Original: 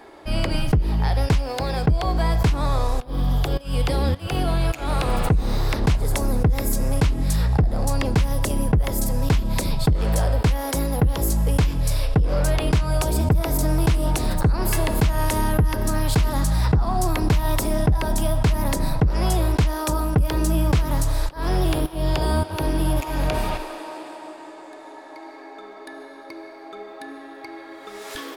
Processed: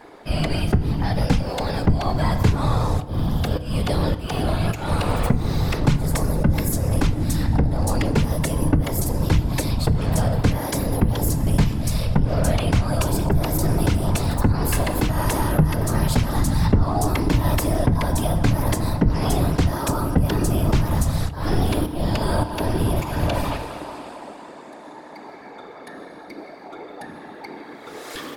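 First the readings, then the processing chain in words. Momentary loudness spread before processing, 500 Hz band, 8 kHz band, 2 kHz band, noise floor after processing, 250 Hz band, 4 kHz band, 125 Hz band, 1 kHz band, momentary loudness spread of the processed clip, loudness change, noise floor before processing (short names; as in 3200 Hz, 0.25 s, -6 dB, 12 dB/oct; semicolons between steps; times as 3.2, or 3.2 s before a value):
17 LU, +0.5 dB, 0.0 dB, +0.5 dB, -40 dBFS, +3.0 dB, 0.0 dB, +1.5 dB, +0.5 dB, 18 LU, +0.5 dB, -41 dBFS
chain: whisperiser; FDN reverb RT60 0.97 s, low-frequency decay 1.5×, high-frequency decay 0.45×, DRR 12 dB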